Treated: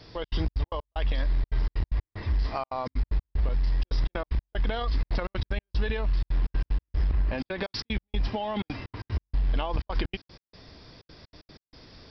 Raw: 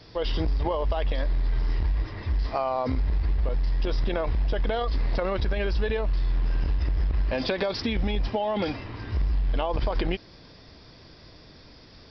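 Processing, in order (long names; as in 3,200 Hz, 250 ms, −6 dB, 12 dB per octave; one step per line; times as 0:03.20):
0:07.13–0:07.63: high-shelf EQ 3,500 Hz −10.5 dB
gate pattern "xxx.xx.x.x..xxx" 188 BPM −60 dB
dynamic equaliser 530 Hz, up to −7 dB, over −41 dBFS, Q 1.1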